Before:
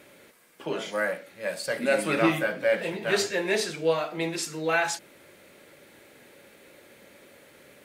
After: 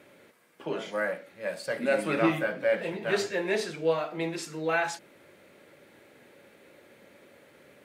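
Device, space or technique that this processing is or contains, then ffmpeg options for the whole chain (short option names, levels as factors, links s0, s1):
behind a face mask: -af "highpass=68,highshelf=f=3400:g=-8,volume=0.841"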